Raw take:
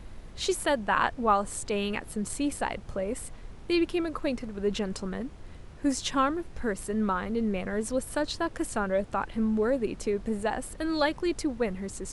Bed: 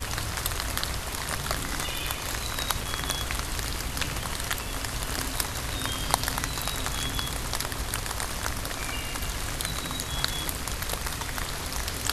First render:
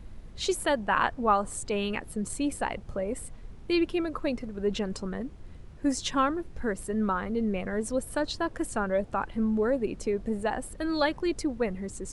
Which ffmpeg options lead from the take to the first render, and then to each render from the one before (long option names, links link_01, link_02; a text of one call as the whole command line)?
ffmpeg -i in.wav -af "afftdn=noise_reduction=6:noise_floor=-45" out.wav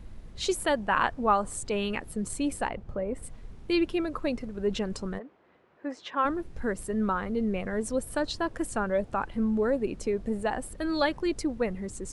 ffmpeg -i in.wav -filter_complex "[0:a]asplit=3[link_01][link_02][link_03];[link_01]afade=type=out:start_time=2.68:duration=0.02[link_04];[link_02]lowpass=frequency=1700:poles=1,afade=type=in:start_time=2.68:duration=0.02,afade=type=out:start_time=3.22:duration=0.02[link_05];[link_03]afade=type=in:start_time=3.22:duration=0.02[link_06];[link_04][link_05][link_06]amix=inputs=3:normalize=0,asplit=3[link_07][link_08][link_09];[link_07]afade=type=out:start_time=5.18:duration=0.02[link_10];[link_08]highpass=470,lowpass=2100,afade=type=in:start_time=5.18:duration=0.02,afade=type=out:start_time=6.24:duration=0.02[link_11];[link_09]afade=type=in:start_time=6.24:duration=0.02[link_12];[link_10][link_11][link_12]amix=inputs=3:normalize=0" out.wav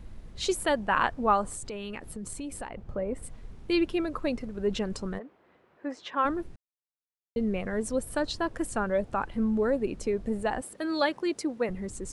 ffmpeg -i in.wav -filter_complex "[0:a]asettb=1/sr,asplit=3[link_01][link_02][link_03];[link_01]atrim=end=1.464[link_04];[link_02]atrim=start=1.46:end=2.79,asetpts=PTS-STARTPTS,afade=type=in:duration=0.004:curve=qsin,afade=type=out:start_time=1.326:duration=0.004:curve=qsin,acompressor=threshold=-34dB:ratio=5:attack=3.2:release=140:knee=1:detection=peak[link_05];[link_03]atrim=start=2.786[link_06];[link_04][link_05]acrossfade=duration=0.004:curve1=hsin:curve2=qsin[link_07];[link_07][link_06]acrossfade=duration=0.004:curve1=qsin:curve2=hsin,asettb=1/sr,asplit=3[link_08][link_09][link_10];[link_08]atrim=end=10.614[link_11];[link_09]atrim=start=10.61:end=11.69,asetpts=PTS-STARTPTS,afade=type=in:duration=0.004:curve=qsin,afade=type=out:start_time=1.076:duration=0.004:curve=qsin,highpass=230[link_12];[link_10]atrim=start=11.686[link_13];[link_11][link_12]acrossfade=duration=0.004:curve1=hsin:curve2=qsin[link_14];[link_14][link_13]acrossfade=duration=0.004:curve1=qsin:curve2=hsin,asplit=3[link_15][link_16][link_17];[link_15]atrim=end=6.56,asetpts=PTS-STARTPTS,afade=type=out:start_time=6.556:duration=0.004:curve=hsin[link_18];[link_16]atrim=start=6.56:end=7.36,asetpts=PTS-STARTPTS,volume=0[link_19];[link_17]atrim=start=7.36,asetpts=PTS-STARTPTS,afade=type=in:duration=0.004:curve=hsin[link_20];[link_18][link_19][link_20]concat=n=3:v=0:a=1" out.wav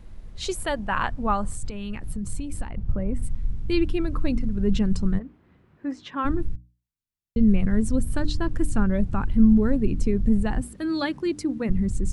ffmpeg -i in.wav -af "bandreject=frequency=60:width_type=h:width=6,bandreject=frequency=120:width_type=h:width=6,bandreject=frequency=180:width_type=h:width=6,bandreject=frequency=240:width_type=h:width=6,bandreject=frequency=300:width_type=h:width=6,asubboost=boost=11:cutoff=170" out.wav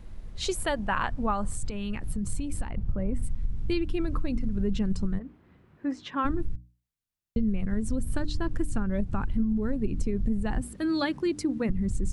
ffmpeg -i in.wav -af "acompressor=threshold=-22dB:ratio=10" out.wav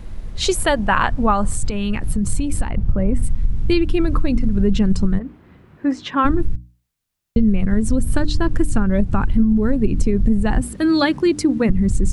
ffmpeg -i in.wav -af "volume=11dB" out.wav